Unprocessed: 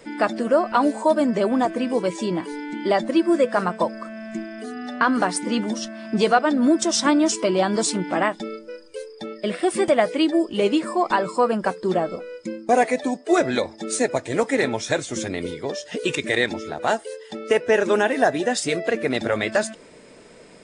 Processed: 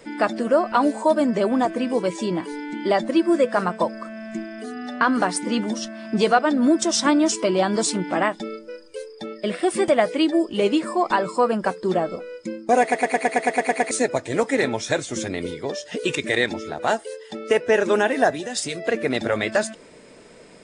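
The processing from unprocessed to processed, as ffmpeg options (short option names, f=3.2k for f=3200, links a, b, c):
-filter_complex "[0:a]asettb=1/sr,asplit=3[a][b][c];[a]atrim=end=18.304[d];[b]atrim=start=18.3:end=18.87,asetpts=PTS-STARTPTS,afade=t=in:d=0.004:c=qsin,afade=t=out:st=0.566:d=0.004:c=qsin,acrossover=split=140|3000[e][f][g];[f]acompressor=threshold=-28dB:ratio=6:attack=3.2:release=140:knee=2.83:detection=peak[h];[e][h][g]amix=inputs=3:normalize=0[i];[c]atrim=start=18.866[j];[d][i]acrossfade=d=0.004:c1=hsin:c2=qsin[k];[k][j]acrossfade=d=0.004:c1=qsin:c2=hsin,asplit=11[l][m][n][o][p][q][r][s][t][u][v];[l]atrim=end=12.922[w];[m]atrim=start=12.808:end=12.922[x];[n]atrim=start=12.808:end=12.922[y];[o]atrim=start=12.808:end=12.922[z];[p]atrim=start=12.808:end=12.922[aa];[q]atrim=start=12.808:end=12.922[ab];[r]atrim=start=12.808:end=12.922[ac];[s]atrim=start=12.808:end=12.922[ad];[t]atrim=start=12.808:end=12.922[ae];[u]atrim=start=12.808:end=12.922[af];[v]atrim=start=13.908[ag];[w][x]acrossfade=d=0.004:c1=hsin:c2=hsin[ah];[ah][y]acrossfade=d=0.004:c1=hsin:c2=hsin[ai];[ai][z]acrossfade=d=0.004:c1=hsin:c2=hsin[aj];[aj][aa]acrossfade=d=0.004:c1=hsin:c2=hsin[ak];[ak][ab]acrossfade=d=0.004:c1=hsin:c2=hsin[al];[al][ac]acrossfade=d=0.004:c1=hsin:c2=hsin[am];[am][ad]acrossfade=d=0.004:c1=hsin:c2=hsin[an];[an][ae]acrossfade=d=0.004:c1=hsin:c2=hsin[ao];[ao][af]acrossfade=d=0.004:c1=hsin:c2=hsin[ap];[ap][ag]acrossfade=d=0.004:c1=hsin:c2=hsin"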